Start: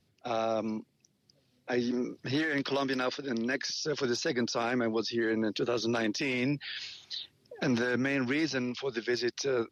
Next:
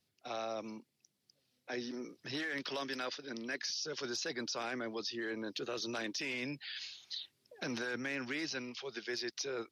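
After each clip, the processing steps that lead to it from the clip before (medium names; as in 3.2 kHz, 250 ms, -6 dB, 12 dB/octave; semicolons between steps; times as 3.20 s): tilt EQ +2 dB/octave; trim -8 dB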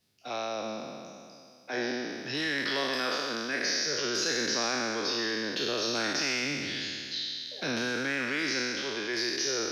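spectral sustain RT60 2.36 s; trim +4 dB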